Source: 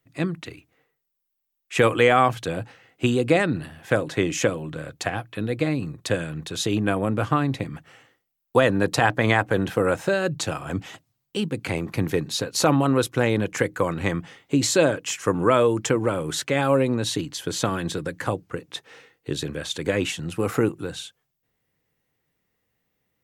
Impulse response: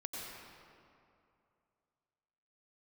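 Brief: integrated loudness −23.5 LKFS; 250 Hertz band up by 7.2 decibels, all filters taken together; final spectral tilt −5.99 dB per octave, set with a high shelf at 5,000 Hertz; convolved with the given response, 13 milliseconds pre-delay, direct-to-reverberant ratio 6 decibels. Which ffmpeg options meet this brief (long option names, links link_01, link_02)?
-filter_complex "[0:a]equalizer=frequency=250:width_type=o:gain=9,highshelf=frequency=5000:gain=-7,asplit=2[link_01][link_02];[1:a]atrim=start_sample=2205,adelay=13[link_03];[link_02][link_03]afir=irnorm=-1:irlink=0,volume=-6dB[link_04];[link_01][link_04]amix=inputs=2:normalize=0,volume=-4dB"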